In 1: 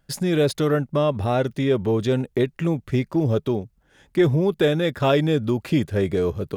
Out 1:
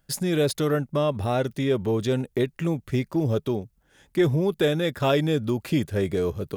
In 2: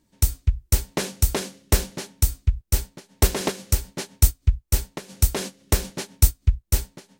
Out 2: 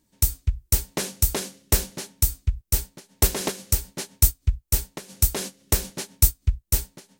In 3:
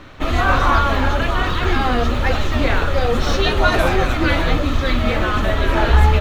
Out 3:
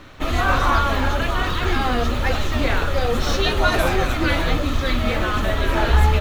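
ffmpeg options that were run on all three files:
-af "highshelf=f=6.3k:g=8,volume=-3dB"

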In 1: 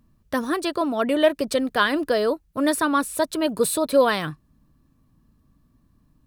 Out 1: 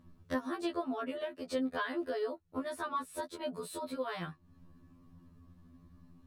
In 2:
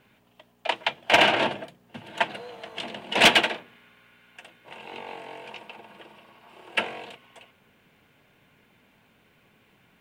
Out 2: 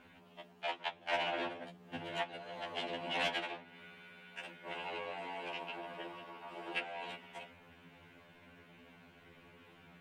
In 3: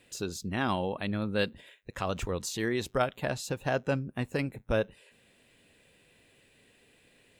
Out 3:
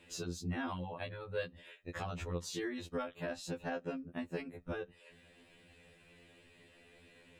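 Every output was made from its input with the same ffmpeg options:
-af "lowpass=f=3.4k:p=1,acompressor=threshold=-40dB:ratio=4,afftfilt=real='re*2*eq(mod(b,4),0)':imag='im*2*eq(mod(b,4),0)':win_size=2048:overlap=0.75,volume=5dB"

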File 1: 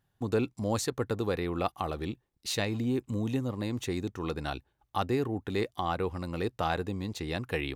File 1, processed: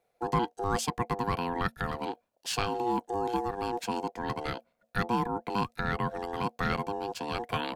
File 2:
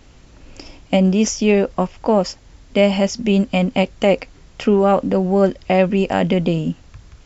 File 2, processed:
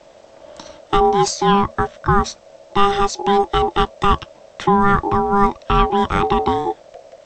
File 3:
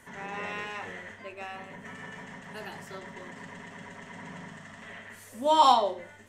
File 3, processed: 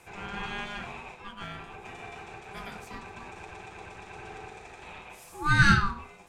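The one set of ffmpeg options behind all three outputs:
-af "aeval=exprs='val(0)*sin(2*PI*830*n/s)':c=same,afreqshift=-230,volume=3dB"

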